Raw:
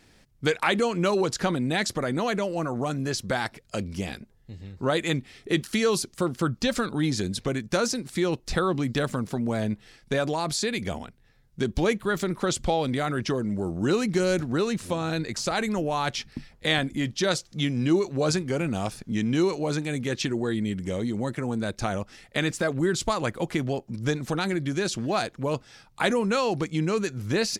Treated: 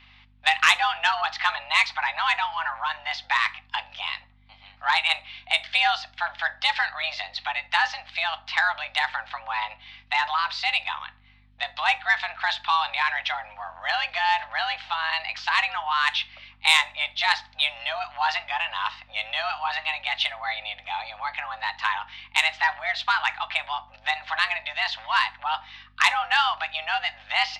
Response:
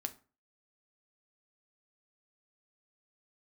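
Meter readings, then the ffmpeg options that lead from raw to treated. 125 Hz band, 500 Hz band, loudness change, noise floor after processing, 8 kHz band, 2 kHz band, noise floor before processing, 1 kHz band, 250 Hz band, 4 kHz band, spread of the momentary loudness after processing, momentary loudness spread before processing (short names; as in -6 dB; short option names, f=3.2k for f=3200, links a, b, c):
under -25 dB, -15.5 dB, +2.5 dB, -55 dBFS, -7.0 dB, +9.0 dB, -59 dBFS, +7.0 dB, under -35 dB, +7.0 dB, 10 LU, 7 LU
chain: -filter_complex "[0:a]highpass=f=530:t=q:w=0.5412,highpass=f=530:t=q:w=1.307,lowpass=f=3.2k:t=q:w=0.5176,lowpass=f=3.2k:t=q:w=0.7071,lowpass=f=3.2k:t=q:w=1.932,afreqshift=320,aeval=exprs='val(0)+0.00126*(sin(2*PI*50*n/s)+sin(2*PI*2*50*n/s)/2+sin(2*PI*3*50*n/s)/3+sin(2*PI*4*50*n/s)/4+sin(2*PI*5*50*n/s)/5)':c=same,asoftclip=type=tanh:threshold=-13.5dB,asplit=2[a][b];[1:a]atrim=start_sample=2205[c];[b][c]afir=irnorm=-1:irlink=0,volume=6.5dB[d];[a][d]amix=inputs=2:normalize=0,crystalizer=i=7:c=0,volume=-8dB"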